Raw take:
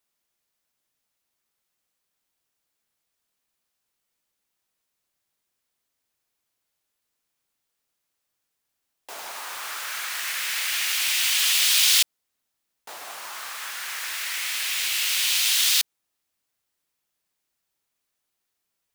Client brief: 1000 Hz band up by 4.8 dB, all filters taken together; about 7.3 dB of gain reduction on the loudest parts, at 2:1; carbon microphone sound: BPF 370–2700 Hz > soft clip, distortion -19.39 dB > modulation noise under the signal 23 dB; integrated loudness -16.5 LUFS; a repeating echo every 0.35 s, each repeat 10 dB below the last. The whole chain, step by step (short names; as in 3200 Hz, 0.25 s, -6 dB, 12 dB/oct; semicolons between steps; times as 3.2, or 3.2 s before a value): bell 1000 Hz +6.5 dB; compressor 2:1, threshold -28 dBFS; BPF 370–2700 Hz; feedback echo 0.35 s, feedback 32%, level -10 dB; soft clip -26.5 dBFS; modulation noise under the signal 23 dB; gain +17.5 dB